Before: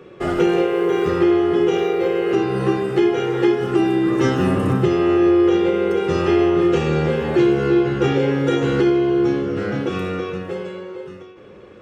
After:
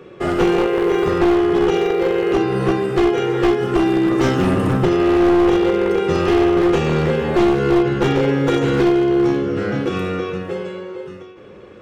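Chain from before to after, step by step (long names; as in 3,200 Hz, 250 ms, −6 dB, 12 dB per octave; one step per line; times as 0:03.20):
wavefolder on the positive side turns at −13.5 dBFS
level +2 dB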